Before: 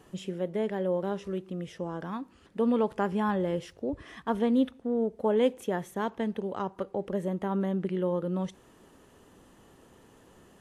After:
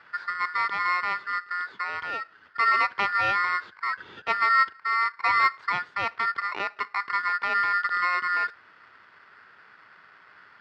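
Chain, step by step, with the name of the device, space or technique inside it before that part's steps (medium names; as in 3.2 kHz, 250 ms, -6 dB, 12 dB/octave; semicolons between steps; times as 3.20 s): ring modulator pedal into a guitar cabinet (polarity switched at an audio rate 1.6 kHz; cabinet simulation 88–3900 Hz, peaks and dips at 94 Hz +5 dB, 410 Hz +5 dB, 960 Hz +6 dB, 1.5 kHz +9 dB)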